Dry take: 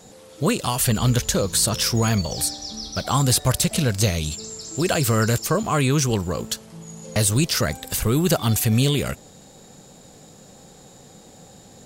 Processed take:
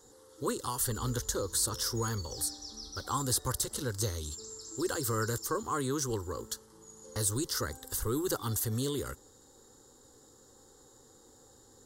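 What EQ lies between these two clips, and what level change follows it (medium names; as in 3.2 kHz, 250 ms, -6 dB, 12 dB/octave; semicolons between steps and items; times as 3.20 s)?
static phaser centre 660 Hz, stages 6; -8.5 dB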